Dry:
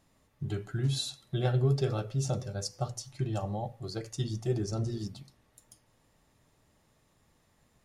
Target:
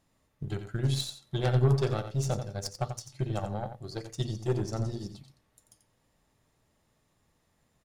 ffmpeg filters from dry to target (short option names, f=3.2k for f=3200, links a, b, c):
-af "aeval=exprs='0.158*(cos(1*acos(clip(val(0)/0.158,-1,1)))-cos(1*PI/2))+0.0708*(cos(2*acos(clip(val(0)/0.158,-1,1)))-cos(2*PI/2))+0.0355*(cos(4*acos(clip(val(0)/0.158,-1,1)))-cos(4*PI/2))+0.02*(cos(5*acos(clip(val(0)/0.158,-1,1)))-cos(5*PI/2))+0.0224*(cos(7*acos(clip(val(0)/0.158,-1,1)))-cos(7*PI/2))':c=same,aecho=1:1:88:0.335"